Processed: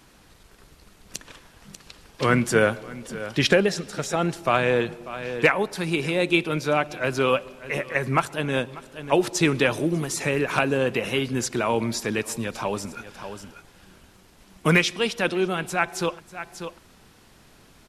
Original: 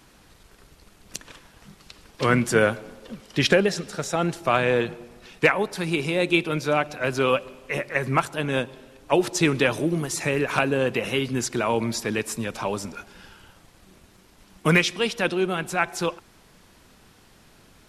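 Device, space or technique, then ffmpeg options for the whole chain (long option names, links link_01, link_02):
ducked delay: -filter_complex "[0:a]asplit=3[link_01][link_02][link_03];[link_02]adelay=592,volume=-9dB[link_04];[link_03]apad=whole_len=814838[link_05];[link_04][link_05]sidechaincompress=threshold=-40dB:ratio=4:attack=10:release=276[link_06];[link_01][link_06]amix=inputs=2:normalize=0"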